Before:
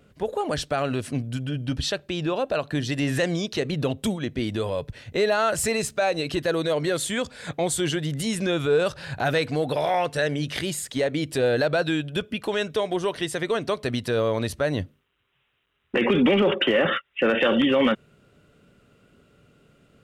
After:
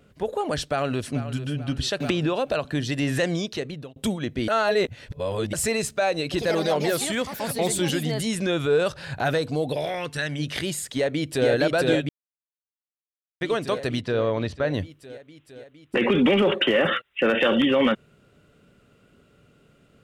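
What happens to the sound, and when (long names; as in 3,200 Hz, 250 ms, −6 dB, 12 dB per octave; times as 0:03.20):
0:00.58–0:01.42: delay throw 440 ms, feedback 45%, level −12.5 dB
0:02.00–0:02.65: multiband upward and downward compressor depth 100%
0:03.40–0:03.96: fade out
0:04.48–0:05.53: reverse
0:06.23–0:08.60: delay with pitch and tempo change per echo 93 ms, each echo +4 semitones, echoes 2, each echo −6 dB
0:09.35–0:10.38: parametric band 2,600 Hz → 380 Hz −14.5 dB
0:10.95–0:11.49: delay throw 460 ms, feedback 75%, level −2 dB
0:12.09–0:13.41: silence
0:14.01–0:14.74: high-frequency loss of the air 140 metres
0:16.17–0:17.65: high-shelf EQ 6,300 Hz +6 dB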